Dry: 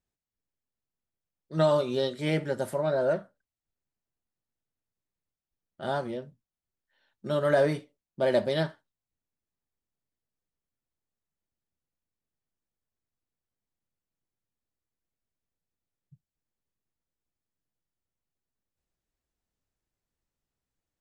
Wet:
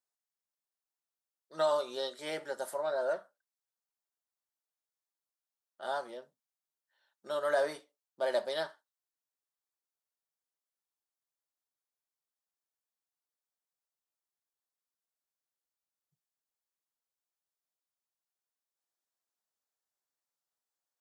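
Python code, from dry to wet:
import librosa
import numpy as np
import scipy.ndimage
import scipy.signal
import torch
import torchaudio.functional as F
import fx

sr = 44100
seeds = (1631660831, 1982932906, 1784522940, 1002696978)

y = scipy.signal.sosfilt(scipy.signal.butter(2, 760.0, 'highpass', fs=sr, output='sos'), x)
y = fx.peak_eq(y, sr, hz=2400.0, db=-9.0, octaves=0.95)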